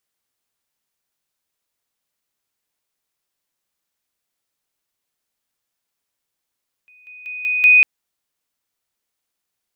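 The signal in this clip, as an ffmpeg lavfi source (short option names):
-f lavfi -i "aevalsrc='pow(10,(-47+10*floor(t/0.19))/20)*sin(2*PI*2490*t)':d=0.95:s=44100"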